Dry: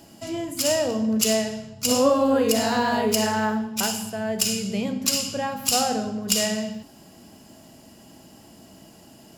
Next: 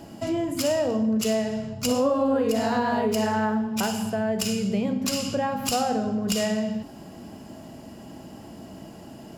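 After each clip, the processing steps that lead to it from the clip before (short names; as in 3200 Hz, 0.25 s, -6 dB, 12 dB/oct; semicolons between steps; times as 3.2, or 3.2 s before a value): high shelf 2600 Hz -11.5 dB; compressor 2.5:1, threshold -32 dBFS, peak gain reduction 11.5 dB; gain +7.5 dB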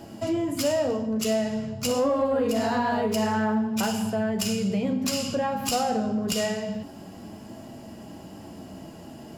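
flange 0.26 Hz, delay 8.6 ms, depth 5.3 ms, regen -42%; in parallel at -4.5 dB: soft clip -24.5 dBFS, distortion -16 dB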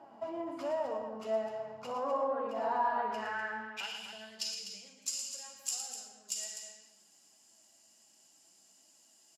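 flange 0.45 Hz, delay 3.2 ms, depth 7.4 ms, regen +58%; band-pass sweep 930 Hz -> 7300 Hz, 2.76–4.9; loudspeakers at several distances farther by 39 m -8 dB, 86 m -9 dB; gain +2 dB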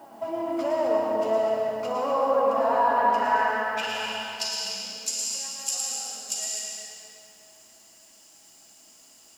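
requantised 12-bit, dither triangular; reverb RT60 2.9 s, pre-delay 0.1 s, DRR -1.5 dB; gain +7 dB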